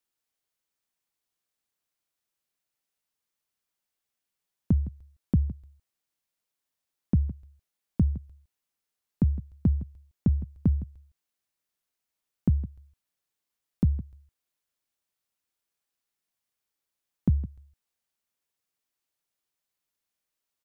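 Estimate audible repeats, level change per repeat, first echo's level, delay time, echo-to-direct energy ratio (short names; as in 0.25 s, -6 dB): 1, no steady repeat, -17.0 dB, 0.161 s, -17.0 dB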